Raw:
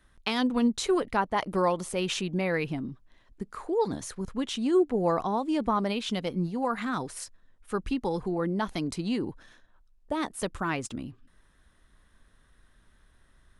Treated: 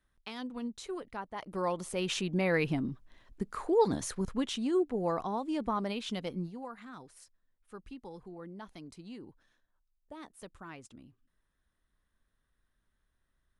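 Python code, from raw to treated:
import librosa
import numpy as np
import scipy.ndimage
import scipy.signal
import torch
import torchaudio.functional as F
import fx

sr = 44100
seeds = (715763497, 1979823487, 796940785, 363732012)

y = fx.gain(x, sr, db=fx.line((1.34, -14.0), (1.71, -6.0), (2.72, 1.0), (4.21, 1.0), (4.77, -6.0), (6.35, -6.0), (6.75, -17.0)))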